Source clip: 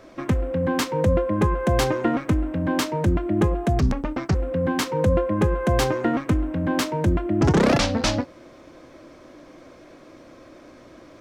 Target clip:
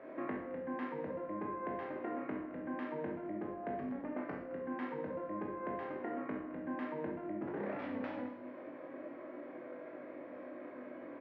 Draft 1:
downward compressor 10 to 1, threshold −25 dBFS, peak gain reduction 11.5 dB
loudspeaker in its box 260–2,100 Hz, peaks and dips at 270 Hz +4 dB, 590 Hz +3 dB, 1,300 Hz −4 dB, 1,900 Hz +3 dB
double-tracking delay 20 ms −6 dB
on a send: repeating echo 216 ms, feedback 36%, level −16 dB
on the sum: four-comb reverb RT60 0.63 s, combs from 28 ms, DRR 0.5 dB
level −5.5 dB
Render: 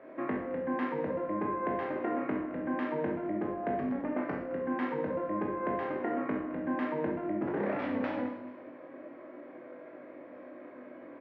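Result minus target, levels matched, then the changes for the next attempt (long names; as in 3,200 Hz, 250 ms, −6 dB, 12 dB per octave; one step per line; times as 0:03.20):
downward compressor: peak gain reduction −7.5 dB
change: downward compressor 10 to 1, threshold −33.5 dBFS, peak gain reduction 19.5 dB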